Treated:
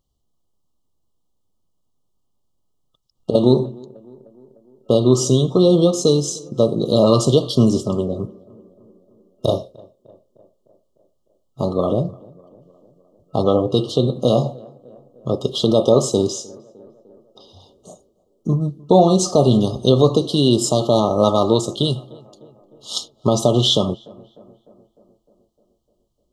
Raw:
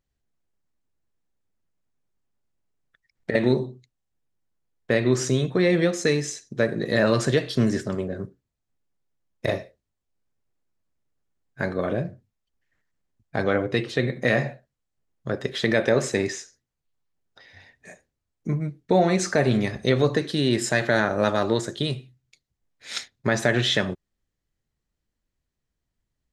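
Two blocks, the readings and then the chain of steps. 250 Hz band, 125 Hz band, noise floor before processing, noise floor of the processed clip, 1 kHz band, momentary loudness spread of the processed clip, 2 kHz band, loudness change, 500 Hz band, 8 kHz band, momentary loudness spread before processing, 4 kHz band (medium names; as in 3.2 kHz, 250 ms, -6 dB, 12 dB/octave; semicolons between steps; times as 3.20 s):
+7.0 dB, +7.0 dB, -82 dBFS, -68 dBFS, +6.5 dB, 12 LU, under -25 dB, +6.5 dB, +7.0 dB, +7.0 dB, 12 LU, +7.0 dB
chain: FFT band-reject 1.3–2.8 kHz; tape echo 303 ms, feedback 68%, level -22.5 dB, low-pass 1.4 kHz; trim +7 dB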